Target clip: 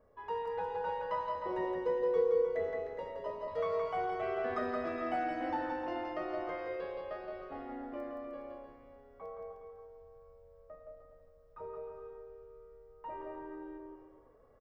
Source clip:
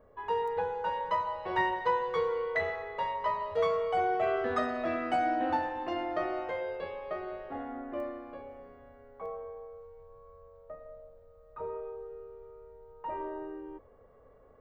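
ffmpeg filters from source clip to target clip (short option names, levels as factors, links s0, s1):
-filter_complex "[0:a]asettb=1/sr,asplit=3[s0][s1][s2];[s0]atrim=end=1.354[s3];[s1]atrim=start=1.35:end=3.48,asetpts=PTS-STARTPTS,afade=t=in:d=0.004:c=qsin,afade=t=out:st=2.126:d=0.004:c=qsin,equalizer=f=125:t=o:w=1:g=-5,equalizer=f=250:t=o:w=1:g=7,equalizer=f=500:t=o:w=1:g=7,equalizer=f=1000:t=o:w=1:g=-10,equalizer=f=2000:t=o:w=1:g=-6,equalizer=f=4000:t=o:w=1:g=-9[s4];[s2]atrim=start=3.476[s5];[s3][s4]acrossfade=d=0.004:c1=hsin:c2=qsin[s6];[s6][s5]acrossfade=d=0.004:c1=qsin:c2=hsin,acrossover=split=2700[s7][s8];[s8]acompressor=threshold=0.00158:ratio=4:attack=1:release=60[s9];[s7][s9]amix=inputs=2:normalize=0,equalizer=f=5200:t=o:w=0.22:g=8.5,aecho=1:1:170|306|414.8|501.8|571.5:0.631|0.398|0.251|0.158|0.1,volume=0.473"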